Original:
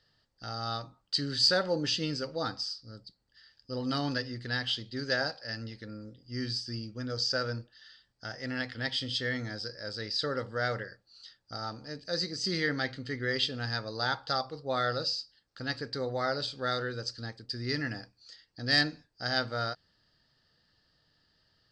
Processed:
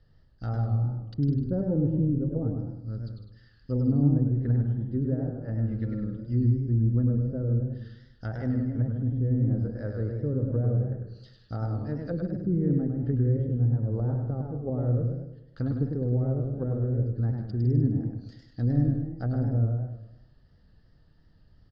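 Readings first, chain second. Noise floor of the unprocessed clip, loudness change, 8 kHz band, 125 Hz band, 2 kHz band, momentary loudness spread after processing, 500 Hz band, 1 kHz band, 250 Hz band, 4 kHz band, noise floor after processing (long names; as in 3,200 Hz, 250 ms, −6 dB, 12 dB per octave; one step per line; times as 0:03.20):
−74 dBFS, +4.5 dB, below −30 dB, +16.0 dB, below −15 dB, 11 LU, +0.5 dB, −10.5 dB, +10.0 dB, below −30 dB, −59 dBFS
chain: treble cut that deepens with the level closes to 340 Hz, closed at −31.5 dBFS
spectral tilt −4.5 dB per octave
on a send: single-tap delay 156 ms −10 dB
on the sum: feedback echo with a swinging delay time 102 ms, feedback 45%, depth 129 cents, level −5 dB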